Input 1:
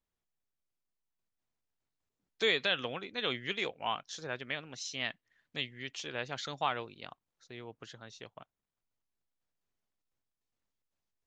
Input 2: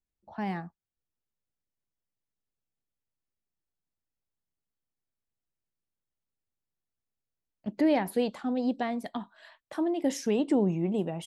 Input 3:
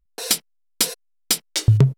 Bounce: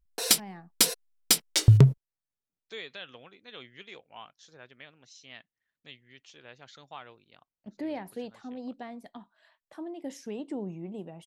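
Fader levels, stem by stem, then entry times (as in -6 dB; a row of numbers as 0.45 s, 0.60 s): -12.0 dB, -10.5 dB, -2.0 dB; 0.30 s, 0.00 s, 0.00 s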